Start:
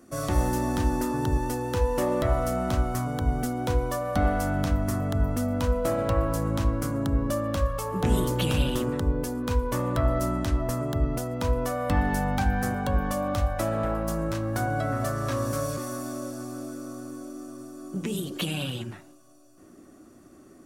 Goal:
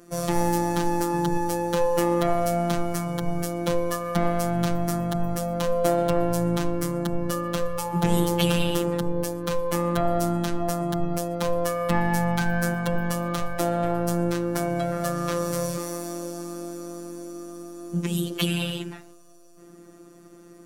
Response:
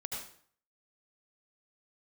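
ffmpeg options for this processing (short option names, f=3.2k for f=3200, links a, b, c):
-af "afftfilt=real='hypot(re,im)*cos(PI*b)':imag='0':win_size=1024:overlap=0.75,aeval=exprs='0.316*(cos(1*acos(clip(val(0)/0.316,-1,1)))-cos(1*PI/2))+0.01*(cos(3*acos(clip(val(0)/0.316,-1,1)))-cos(3*PI/2))':c=same,volume=7.5dB"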